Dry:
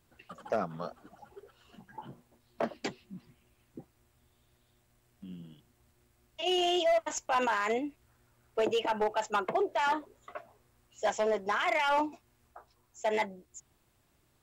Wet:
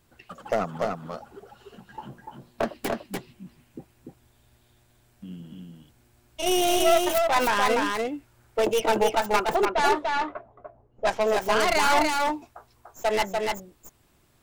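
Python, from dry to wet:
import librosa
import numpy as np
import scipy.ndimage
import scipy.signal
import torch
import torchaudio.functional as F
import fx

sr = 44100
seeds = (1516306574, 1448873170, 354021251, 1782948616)

y = fx.tracing_dist(x, sr, depth_ms=0.36)
y = y + 10.0 ** (-3.0 / 20.0) * np.pad(y, (int(293 * sr / 1000.0), 0))[:len(y)]
y = fx.env_lowpass(y, sr, base_hz=530.0, full_db=-23.0, at=(9.65, 11.21))
y = y * librosa.db_to_amplitude(5.5)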